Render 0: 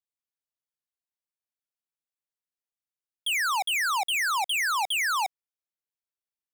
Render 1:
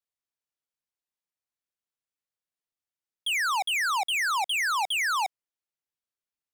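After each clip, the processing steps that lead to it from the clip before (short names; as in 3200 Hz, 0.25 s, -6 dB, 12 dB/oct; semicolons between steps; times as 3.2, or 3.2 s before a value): high shelf 11000 Hz -7 dB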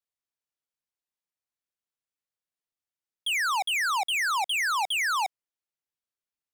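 nothing audible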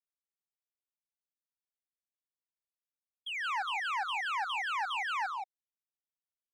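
power-law curve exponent 2; loudspeakers at several distances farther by 49 m -10 dB, 60 m -3 dB; spectral expander 1.5:1; gain -7 dB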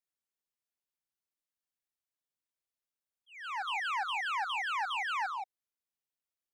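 auto swell 0.454 s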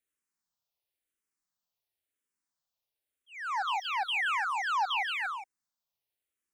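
endless phaser -0.96 Hz; gain +6.5 dB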